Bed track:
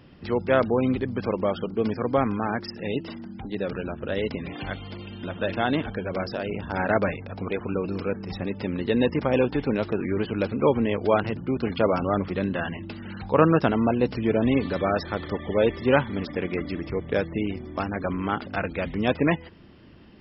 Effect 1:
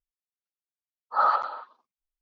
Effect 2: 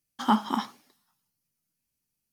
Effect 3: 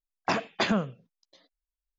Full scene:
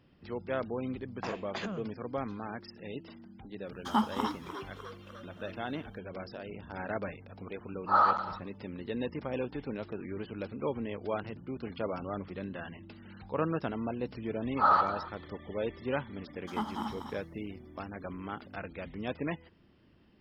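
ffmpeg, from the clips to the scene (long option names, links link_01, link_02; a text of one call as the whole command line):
ffmpeg -i bed.wav -i cue0.wav -i cue1.wav -i cue2.wav -filter_complex "[2:a]asplit=2[link_01][link_02];[1:a]asplit=2[link_03][link_04];[0:a]volume=-13dB[link_05];[3:a]acompressor=threshold=-26dB:ratio=6:attack=3.2:release=140:knee=1:detection=peak[link_06];[link_01]asplit=8[link_07][link_08][link_09][link_10][link_11][link_12][link_13][link_14];[link_08]adelay=301,afreqshift=86,volume=-11.5dB[link_15];[link_09]adelay=602,afreqshift=172,volume=-16.2dB[link_16];[link_10]adelay=903,afreqshift=258,volume=-21dB[link_17];[link_11]adelay=1204,afreqshift=344,volume=-25.7dB[link_18];[link_12]adelay=1505,afreqshift=430,volume=-30.4dB[link_19];[link_13]adelay=1806,afreqshift=516,volume=-35.2dB[link_20];[link_14]adelay=2107,afreqshift=602,volume=-39.9dB[link_21];[link_07][link_15][link_16][link_17][link_18][link_19][link_20][link_21]amix=inputs=8:normalize=0[link_22];[link_02]aecho=1:1:93.29|195.3|271.1:0.316|0.562|0.398[link_23];[link_06]atrim=end=1.98,asetpts=PTS-STARTPTS,volume=-7dB,afade=type=in:duration=0.004:curve=hsin,afade=type=out:start_time=1.976:duration=0.004:curve=hsin,adelay=950[link_24];[link_22]atrim=end=2.32,asetpts=PTS-STARTPTS,volume=-5dB,afade=type=in:duration=0.004:curve=hsin,afade=type=out:start_time=2.316:duration=0.004:curve=hsin,adelay=3660[link_25];[link_03]atrim=end=2.21,asetpts=PTS-STARTPTS,volume=-2dB,afade=type=in:duration=0.004:curve=hsin,afade=type=out:start_time=2.206:duration=0.004:curve=hsin,adelay=6750[link_26];[link_04]atrim=end=2.21,asetpts=PTS-STARTPTS,volume=-2dB,afade=type=in:duration=0.004:curve=hsin,afade=type=out:start_time=2.206:duration=0.004:curve=hsin,adelay=13450[link_27];[link_23]atrim=end=2.32,asetpts=PTS-STARTPTS,volume=-12.5dB,afade=type=in:duration=0.004:curve=hsin,afade=type=out:start_time=2.316:duration=0.004:curve=hsin,adelay=16280[link_28];[link_05][link_24][link_25][link_26][link_27][link_28]amix=inputs=6:normalize=0" out.wav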